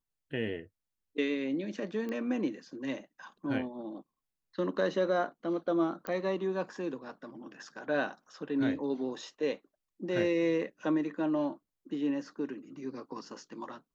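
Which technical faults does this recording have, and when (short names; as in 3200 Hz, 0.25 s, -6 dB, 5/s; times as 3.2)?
2.09 pop -26 dBFS
6.07 pop -21 dBFS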